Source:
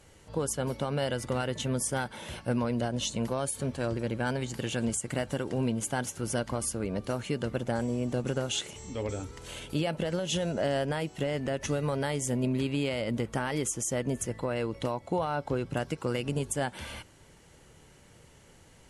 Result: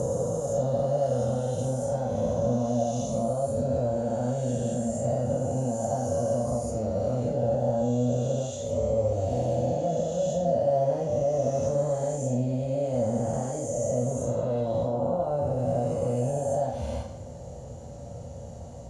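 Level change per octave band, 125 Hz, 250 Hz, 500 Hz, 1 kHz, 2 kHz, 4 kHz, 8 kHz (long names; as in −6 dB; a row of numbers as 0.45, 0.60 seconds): +4.5 dB, +1.5 dB, +7.5 dB, +3.5 dB, below −15 dB, below −10 dB, −4.0 dB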